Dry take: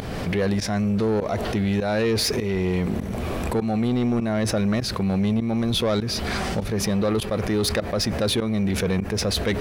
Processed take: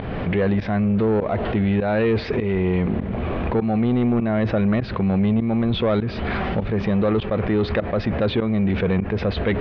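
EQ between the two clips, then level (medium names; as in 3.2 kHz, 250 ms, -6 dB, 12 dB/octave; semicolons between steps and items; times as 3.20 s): low-pass 3.4 kHz 24 dB/octave; distance through air 170 m; +3.0 dB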